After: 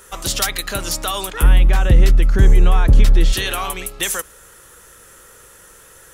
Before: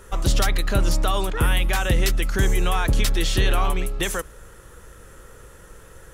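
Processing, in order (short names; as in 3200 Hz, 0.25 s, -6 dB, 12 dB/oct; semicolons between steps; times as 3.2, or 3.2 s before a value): tilt +2.5 dB/oct, from 1.42 s -2 dB/oct, from 3.32 s +2.5 dB/oct; gain +1 dB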